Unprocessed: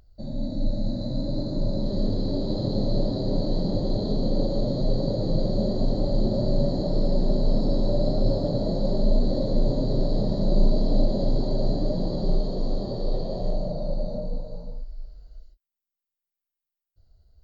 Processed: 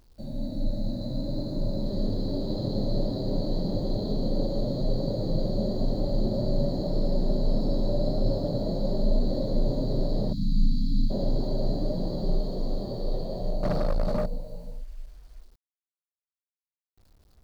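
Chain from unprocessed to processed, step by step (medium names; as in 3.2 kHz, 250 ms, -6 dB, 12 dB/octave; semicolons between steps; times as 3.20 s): 10.33–11.10 s: spectral selection erased 300–3200 Hz; 13.63–14.26 s: waveshaping leveller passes 3; bit crusher 10-bit; trim -3 dB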